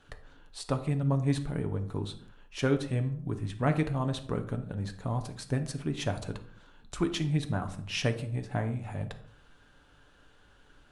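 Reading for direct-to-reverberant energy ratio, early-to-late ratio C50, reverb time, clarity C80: 6.0 dB, 12.5 dB, non-exponential decay, 16.0 dB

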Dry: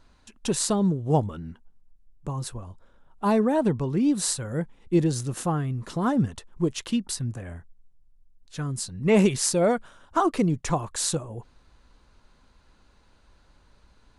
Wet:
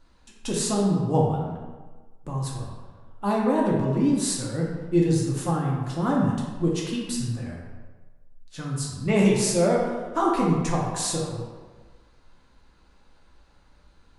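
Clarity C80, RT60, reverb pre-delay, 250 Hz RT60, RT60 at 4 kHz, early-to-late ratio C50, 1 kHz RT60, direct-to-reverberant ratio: 3.5 dB, 1.3 s, 3 ms, 1.3 s, 0.85 s, 1.0 dB, 1.3 s, −3.5 dB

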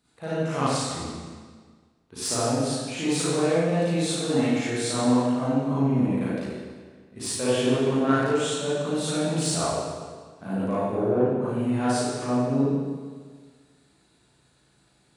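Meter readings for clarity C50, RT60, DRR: −7.0 dB, 1.6 s, −11.0 dB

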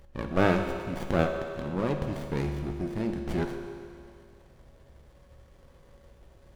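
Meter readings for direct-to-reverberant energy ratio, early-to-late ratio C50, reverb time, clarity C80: 4.0 dB, 5.5 dB, 2.2 s, 6.5 dB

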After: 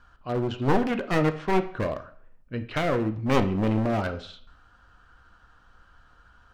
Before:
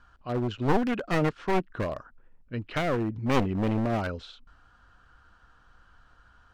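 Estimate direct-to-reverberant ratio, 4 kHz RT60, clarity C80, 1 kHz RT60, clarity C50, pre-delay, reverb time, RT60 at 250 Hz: 8.5 dB, 0.50 s, 17.0 dB, 0.55 s, 13.0 dB, 7 ms, 0.50 s, 0.55 s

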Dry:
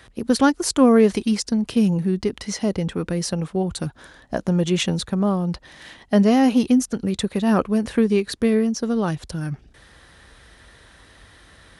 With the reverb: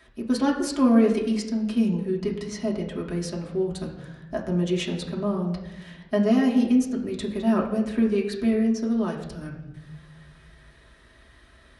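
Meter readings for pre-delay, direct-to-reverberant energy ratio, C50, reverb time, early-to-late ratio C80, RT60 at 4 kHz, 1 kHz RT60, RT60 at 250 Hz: 3 ms, −3.5 dB, 7.5 dB, 1.1 s, 9.5 dB, 0.75 s, 0.90 s, 1.6 s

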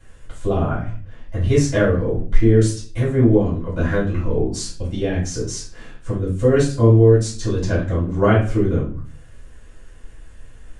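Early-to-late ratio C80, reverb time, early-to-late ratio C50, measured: 11.5 dB, 0.40 s, 5.5 dB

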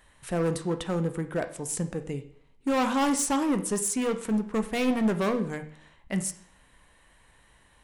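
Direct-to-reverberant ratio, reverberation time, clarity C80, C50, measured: 8.0 dB, 0.60 s, 16.0 dB, 12.5 dB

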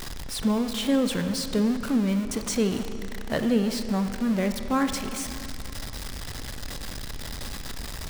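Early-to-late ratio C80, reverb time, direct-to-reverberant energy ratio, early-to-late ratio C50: 9.5 dB, 2.8 s, 8.0 dB, 8.5 dB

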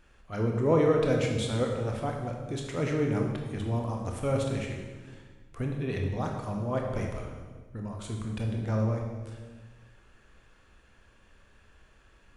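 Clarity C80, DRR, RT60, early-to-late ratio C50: 5.0 dB, 1.0 dB, 1.4 s, 3.5 dB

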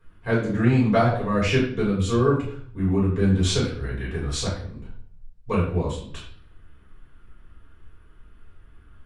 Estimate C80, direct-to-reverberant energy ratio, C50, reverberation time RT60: 8.0 dB, −8.0 dB, 4.0 dB, 0.55 s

